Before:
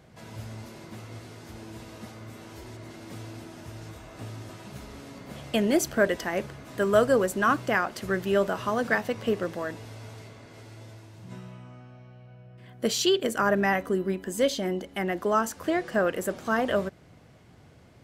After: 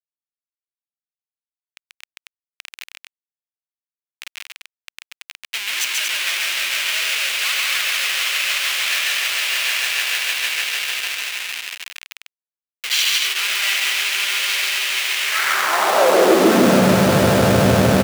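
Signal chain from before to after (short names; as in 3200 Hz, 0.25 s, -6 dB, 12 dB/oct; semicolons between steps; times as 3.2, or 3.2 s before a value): swelling echo 0.152 s, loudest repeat 5, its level -8 dB; Schmitt trigger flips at -28 dBFS; high-pass sweep 2500 Hz -> 110 Hz, 15.19–16.98; loudspeakers at several distances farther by 47 m -2 dB, 80 m -5 dB; gain +7 dB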